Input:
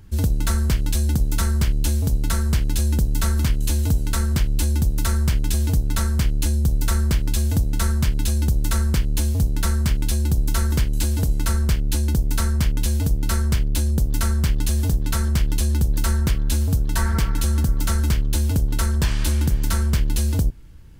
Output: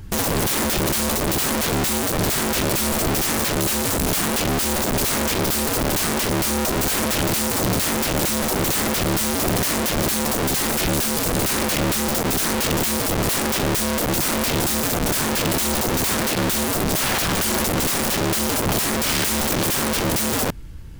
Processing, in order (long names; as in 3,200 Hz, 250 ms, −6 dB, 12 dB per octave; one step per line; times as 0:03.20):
speech leveller 2 s
wrap-around overflow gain 24 dB
level +7.5 dB